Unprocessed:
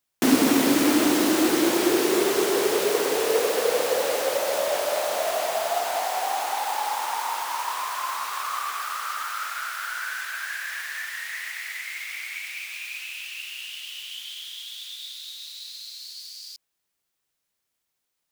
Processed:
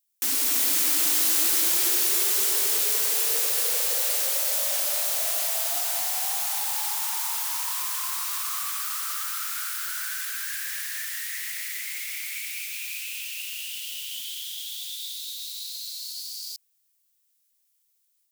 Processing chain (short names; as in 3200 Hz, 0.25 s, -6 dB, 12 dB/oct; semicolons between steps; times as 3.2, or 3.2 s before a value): AGC gain up to 5 dB; differentiator; gain +1.5 dB